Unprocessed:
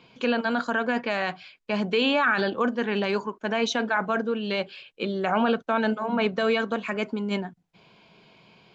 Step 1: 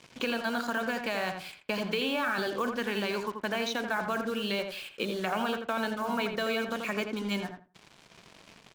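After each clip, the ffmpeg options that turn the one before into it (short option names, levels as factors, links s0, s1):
-filter_complex "[0:a]acrossover=split=1200|4200[s0][s1][s2];[s0]acompressor=threshold=0.0126:ratio=4[s3];[s1]acompressor=threshold=0.00891:ratio=4[s4];[s2]acompressor=threshold=0.00398:ratio=4[s5];[s3][s4][s5]amix=inputs=3:normalize=0,acrusher=bits=7:mix=0:aa=0.5,asplit=2[s6][s7];[s7]adelay=84,lowpass=f=1900:p=1,volume=0.562,asplit=2[s8][s9];[s9]adelay=84,lowpass=f=1900:p=1,volume=0.2,asplit=2[s10][s11];[s11]adelay=84,lowpass=f=1900:p=1,volume=0.2[s12];[s6][s8][s10][s12]amix=inputs=4:normalize=0,volume=1.68"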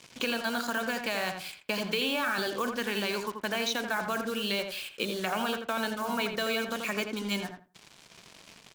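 -af "highshelf=f=3500:g=8.5,volume=0.891"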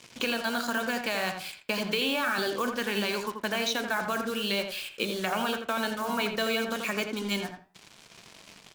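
-af "flanger=delay=8.6:depth=4.1:regen=82:speed=0.61:shape=sinusoidal,volume=2"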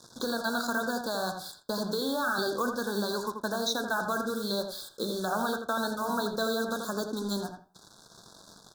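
-af "asuperstop=centerf=2400:order=20:qfactor=1.3"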